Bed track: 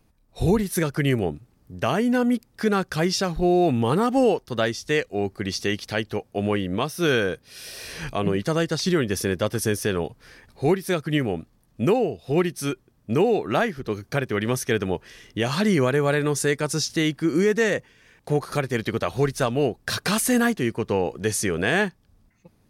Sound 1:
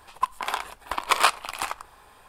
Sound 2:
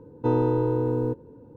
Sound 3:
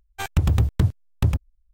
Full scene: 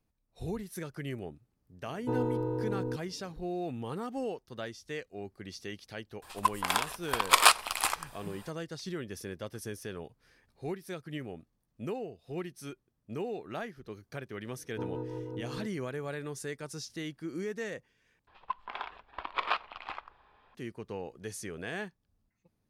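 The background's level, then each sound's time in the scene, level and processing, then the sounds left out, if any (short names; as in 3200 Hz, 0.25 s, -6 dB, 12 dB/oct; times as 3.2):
bed track -16.5 dB
1.83 add 2 -9 dB
6.22 add 1 -2.5 dB + high shelf 3400 Hz +8 dB
14.53 add 2 -14 dB + rotary speaker horn 6 Hz
18.27 replace with 1 -10.5 dB + LPF 3700 Hz 24 dB/oct
not used: 3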